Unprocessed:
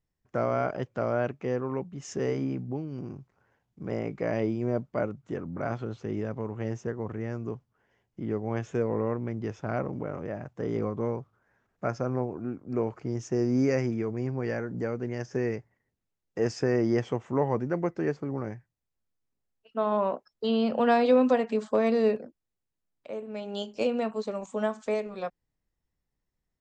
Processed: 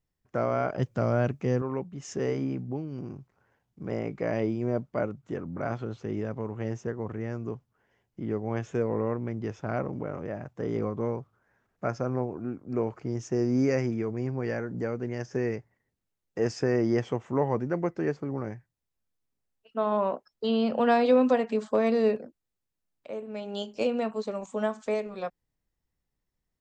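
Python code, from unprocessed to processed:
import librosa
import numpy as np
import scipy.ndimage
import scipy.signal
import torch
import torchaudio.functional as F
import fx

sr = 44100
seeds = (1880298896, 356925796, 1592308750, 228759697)

y = fx.bass_treble(x, sr, bass_db=9, treble_db=8, at=(0.78, 1.62))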